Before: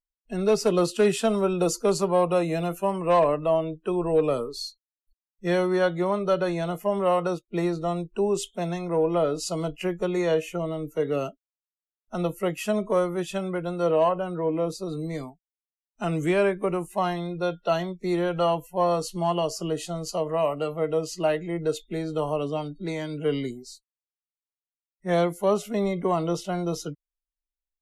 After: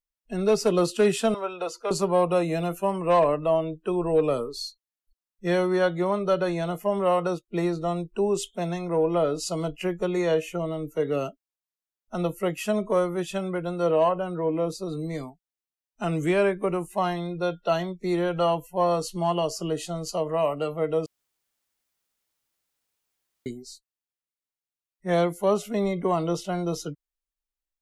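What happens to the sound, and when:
1.34–1.91 three-band isolator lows -23 dB, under 520 Hz, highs -16 dB, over 4200 Hz
21.06–23.46 room tone

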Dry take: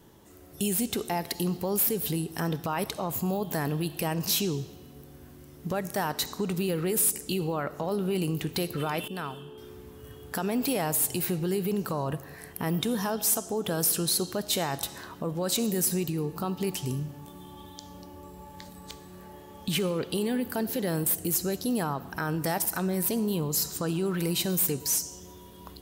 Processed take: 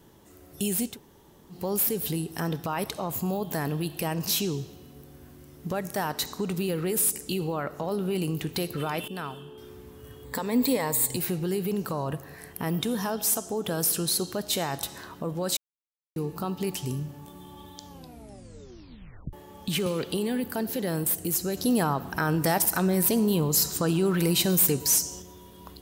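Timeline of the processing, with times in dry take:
0.91–1.57 room tone, crossfade 0.16 s
10.24–11.17 ripple EQ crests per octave 1, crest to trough 11 dB
15.57–16.16 mute
17.88 tape stop 1.45 s
19.86–20.44 three-band squash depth 70%
21.57–25.22 gain +4.5 dB

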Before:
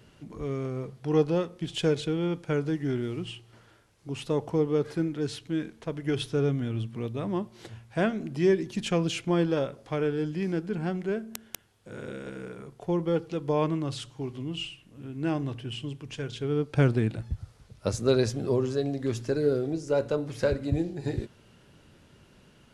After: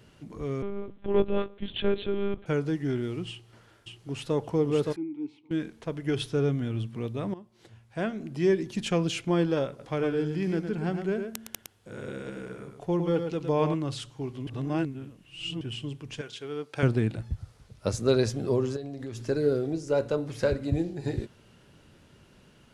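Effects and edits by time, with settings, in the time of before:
0.62–2.46 monotone LPC vocoder at 8 kHz 200 Hz
3.29–4.35 echo throw 0.57 s, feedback 10%, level -3 dB
4.96–5.51 vowel filter u
7.34–8.63 fade in, from -18.5 dB
9.68–13.74 echo 0.111 s -7 dB
14.47–15.61 reverse
16.21–16.83 HPF 770 Hz 6 dB/oct
18.76–19.26 compressor, threshold -33 dBFS

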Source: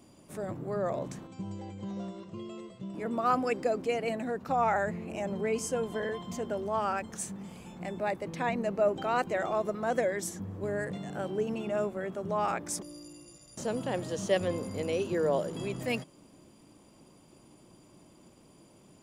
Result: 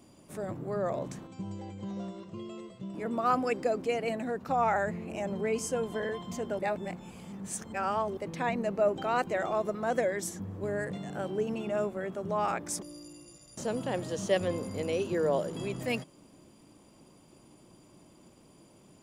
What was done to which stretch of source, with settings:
6.59–8.17 reverse

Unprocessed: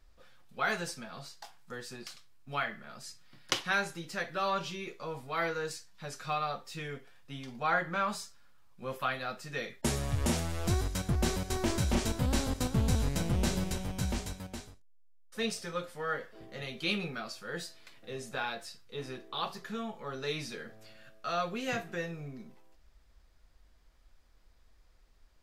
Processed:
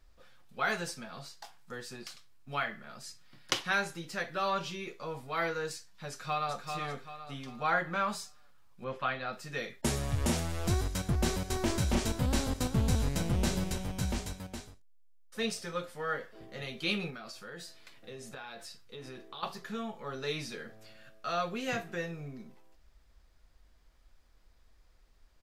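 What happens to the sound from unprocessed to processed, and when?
6.09–6.66 echo throw 0.39 s, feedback 40%, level -5.5 dB
8.84–9.33 LPF 3900 Hz
17.1–19.43 compressor, threshold -41 dBFS

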